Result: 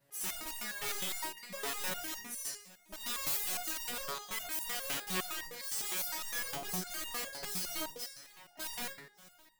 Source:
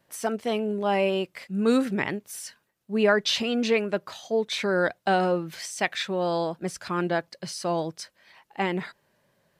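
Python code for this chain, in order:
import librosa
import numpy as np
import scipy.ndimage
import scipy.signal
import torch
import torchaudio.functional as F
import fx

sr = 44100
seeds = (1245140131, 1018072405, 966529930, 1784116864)

p1 = fx.spec_trails(x, sr, decay_s=0.54)
p2 = fx.over_compress(p1, sr, threshold_db=-25.0, ratio=-0.5)
p3 = p1 + (p2 * 10.0 ** (0.5 / 20.0))
p4 = (np.mod(10.0 ** (20.0 / 20.0) * p3 + 1.0, 2.0) - 1.0) / 10.0 ** (20.0 / 20.0)
p5 = fx.high_shelf(p4, sr, hz=9000.0, db=8.0)
p6 = p5 + fx.echo_feedback(p5, sr, ms=579, feedback_pct=52, wet_db=-22, dry=0)
p7 = fx.resonator_held(p6, sr, hz=9.8, low_hz=140.0, high_hz=930.0)
y = p7 * 10.0 ** (-1.5 / 20.0)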